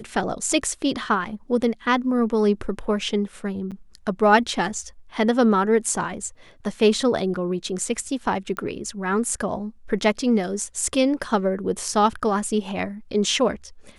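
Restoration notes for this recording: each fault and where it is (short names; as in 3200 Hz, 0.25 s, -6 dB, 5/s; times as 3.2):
3.71–3.72 gap 7.4 ms
8.57 pop -16 dBFS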